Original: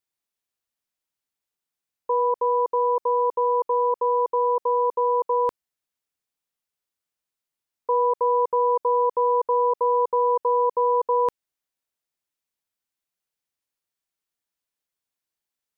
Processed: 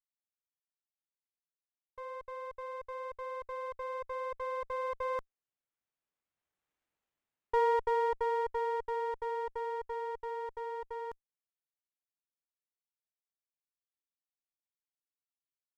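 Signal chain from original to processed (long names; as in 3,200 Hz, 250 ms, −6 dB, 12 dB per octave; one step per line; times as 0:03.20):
source passing by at 0:06.82, 19 m/s, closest 8.5 metres
windowed peak hold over 9 samples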